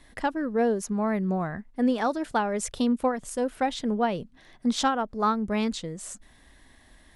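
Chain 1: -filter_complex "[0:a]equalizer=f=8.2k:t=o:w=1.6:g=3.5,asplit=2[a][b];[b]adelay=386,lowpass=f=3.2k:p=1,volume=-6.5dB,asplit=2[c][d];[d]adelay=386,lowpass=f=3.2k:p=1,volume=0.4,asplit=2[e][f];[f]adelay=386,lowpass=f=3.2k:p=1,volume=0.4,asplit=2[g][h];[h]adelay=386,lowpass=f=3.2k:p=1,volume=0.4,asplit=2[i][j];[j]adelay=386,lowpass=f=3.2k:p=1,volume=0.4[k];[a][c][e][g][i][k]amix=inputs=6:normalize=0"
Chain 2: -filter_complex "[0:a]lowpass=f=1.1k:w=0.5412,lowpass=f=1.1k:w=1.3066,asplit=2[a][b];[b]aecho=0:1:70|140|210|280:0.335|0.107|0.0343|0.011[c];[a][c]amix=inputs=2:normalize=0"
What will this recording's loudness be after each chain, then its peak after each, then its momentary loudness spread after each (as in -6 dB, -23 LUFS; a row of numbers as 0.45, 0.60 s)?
-26.5, -27.5 LUFS; -10.5, -14.5 dBFS; 7, 7 LU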